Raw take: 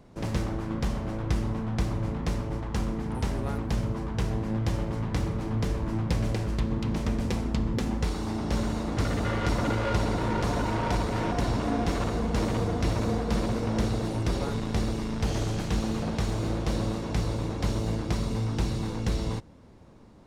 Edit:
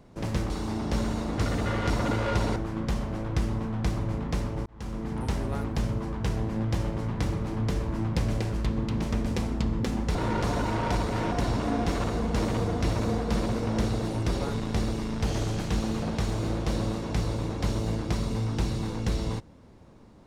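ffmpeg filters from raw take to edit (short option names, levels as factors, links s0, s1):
-filter_complex "[0:a]asplit=5[s0][s1][s2][s3][s4];[s0]atrim=end=0.502[s5];[s1]atrim=start=8.088:end=10.152[s6];[s2]atrim=start=0.498:end=2.6,asetpts=PTS-STARTPTS,afade=t=out:st=2.098:d=0.004:c=hsin[s7];[s3]atrim=start=2.6:end=8.092,asetpts=PTS-STARTPTS,afade=t=in:d=0.46[s8];[s4]atrim=start=10.148[s9];[s5][s6]acrossfade=d=0.004:c1=hsin:c2=hsin[s10];[s7][s8]concat=n=2:v=0:a=1[s11];[s10][s11]acrossfade=d=0.004:c1=hsin:c2=hsin[s12];[s12][s9]acrossfade=d=0.004:c1=hsin:c2=hsin"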